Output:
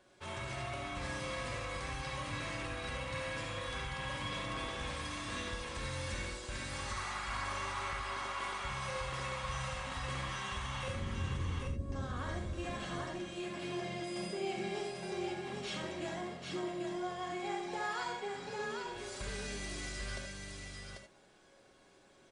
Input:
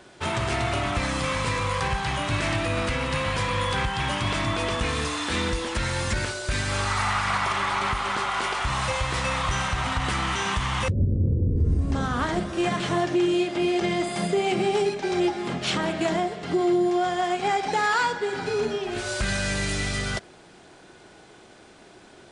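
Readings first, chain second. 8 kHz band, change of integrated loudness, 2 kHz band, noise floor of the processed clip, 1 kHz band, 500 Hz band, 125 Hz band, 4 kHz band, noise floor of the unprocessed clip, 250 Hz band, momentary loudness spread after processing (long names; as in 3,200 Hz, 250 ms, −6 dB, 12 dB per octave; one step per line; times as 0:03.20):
−12.5 dB, −14.0 dB, −13.0 dB, −63 dBFS, −14.5 dB, −15.0 dB, −14.5 dB, −13.0 dB, −50 dBFS, −16.0 dB, 3 LU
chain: tuned comb filter 550 Hz, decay 0.15 s, harmonics all, mix 80%
multi-tap delay 44/67/792 ms −9/−8/−3.5 dB
reverb whose tail is shaped and stops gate 100 ms rising, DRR 5.5 dB
level −6 dB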